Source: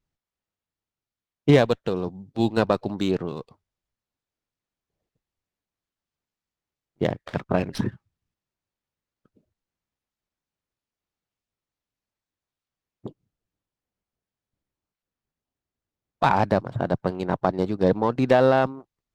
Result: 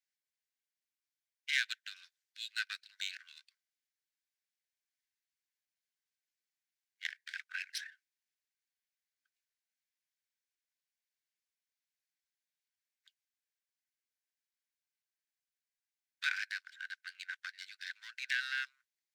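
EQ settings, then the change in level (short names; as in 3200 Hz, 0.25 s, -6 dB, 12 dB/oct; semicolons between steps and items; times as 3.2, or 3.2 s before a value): rippled Chebyshev high-pass 1500 Hz, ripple 3 dB; -1.0 dB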